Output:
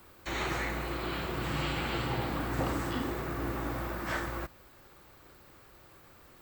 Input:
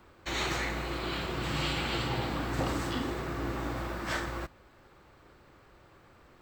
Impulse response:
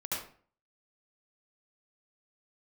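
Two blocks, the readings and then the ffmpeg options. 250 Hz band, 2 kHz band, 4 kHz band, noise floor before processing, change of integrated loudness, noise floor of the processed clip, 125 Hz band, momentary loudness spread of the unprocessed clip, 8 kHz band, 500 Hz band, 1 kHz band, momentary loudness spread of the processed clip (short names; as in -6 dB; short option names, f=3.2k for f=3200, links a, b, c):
-0.5 dB, -1.0 dB, -4.5 dB, -59 dBFS, -1.0 dB, -57 dBFS, -0.5 dB, 5 LU, -3.5 dB, -0.5 dB, 0.0 dB, 3 LU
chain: -filter_complex "[0:a]aemphasis=mode=production:type=50fm,acrossover=split=2500[a][b];[b]acompressor=threshold=-45dB:ratio=4:attack=1:release=60[c];[a][c]amix=inputs=2:normalize=0"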